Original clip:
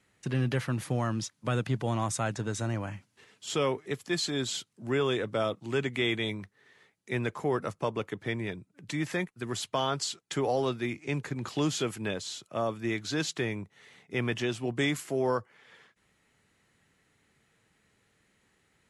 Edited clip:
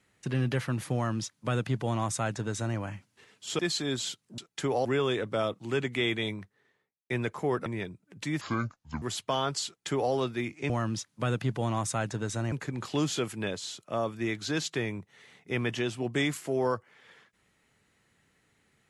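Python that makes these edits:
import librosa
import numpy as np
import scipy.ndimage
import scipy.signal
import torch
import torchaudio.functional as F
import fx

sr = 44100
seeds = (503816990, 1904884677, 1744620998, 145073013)

y = fx.studio_fade_out(x, sr, start_s=6.26, length_s=0.85)
y = fx.edit(y, sr, fx.duplicate(start_s=0.95, length_s=1.82, to_s=11.15),
    fx.cut(start_s=3.59, length_s=0.48),
    fx.cut(start_s=7.67, length_s=0.66),
    fx.speed_span(start_s=9.08, length_s=0.39, speed=0.64),
    fx.duplicate(start_s=10.11, length_s=0.47, to_s=4.86), tone=tone)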